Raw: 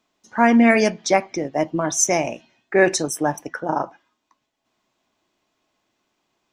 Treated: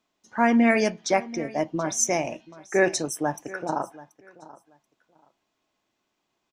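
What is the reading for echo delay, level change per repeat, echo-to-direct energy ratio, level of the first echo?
732 ms, -14.5 dB, -19.0 dB, -19.0 dB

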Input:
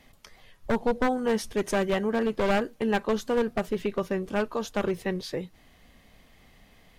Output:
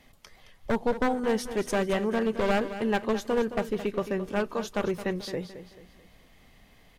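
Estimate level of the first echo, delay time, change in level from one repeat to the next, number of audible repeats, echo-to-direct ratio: -12.0 dB, 218 ms, -8.0 dB, 3, -11.5 dB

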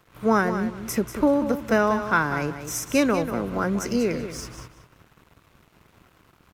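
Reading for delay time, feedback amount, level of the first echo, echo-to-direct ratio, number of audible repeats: 190 ms, 19%, -10.0 dB, -10.0 dB, 2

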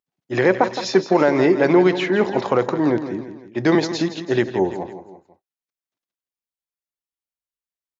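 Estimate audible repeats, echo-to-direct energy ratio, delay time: 3, -10.0 dB, 166 ms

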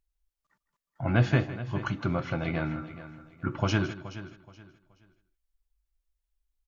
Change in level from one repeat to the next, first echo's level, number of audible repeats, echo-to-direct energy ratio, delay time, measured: no regular repeats, -15.0 dB, 4, -11.5 dB, 159 ms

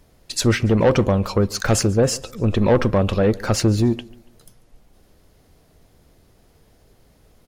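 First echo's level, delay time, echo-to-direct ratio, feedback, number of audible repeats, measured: -22.5 dB, 142 ms, -22.0 dB, 38%, 2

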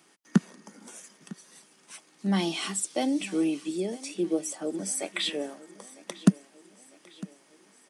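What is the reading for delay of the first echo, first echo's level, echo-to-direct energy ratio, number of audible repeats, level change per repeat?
954 ms, -20.0 dB, -18.5 dB, 3, -5.5 dB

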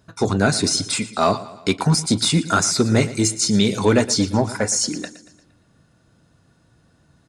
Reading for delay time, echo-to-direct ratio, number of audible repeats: 116 ms, -15.0 dB, 4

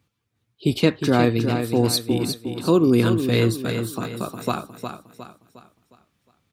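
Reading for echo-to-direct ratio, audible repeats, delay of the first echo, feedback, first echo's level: -6.5 dB, 4, 359 ms, 41%, -7.5 dB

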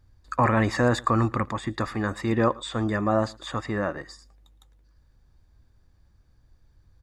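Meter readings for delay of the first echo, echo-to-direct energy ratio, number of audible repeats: 112 ms, -24.0 dB, 1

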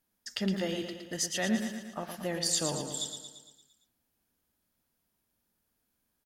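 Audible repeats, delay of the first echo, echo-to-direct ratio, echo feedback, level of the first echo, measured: 6, 114 ms, -5.5 dB, 56%, -7.0 dB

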